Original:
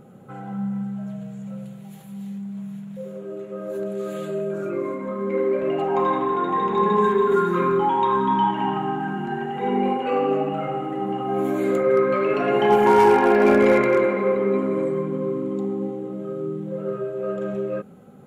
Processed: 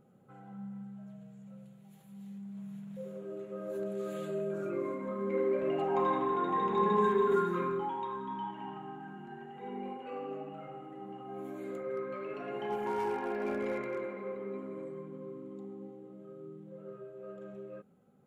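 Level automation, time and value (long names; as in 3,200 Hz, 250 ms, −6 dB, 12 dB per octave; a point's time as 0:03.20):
0:01.82 −16.5 dB
0:02.94 −8.5 dB
0:07.33 −8.5 dB
0:08.17 −19 dB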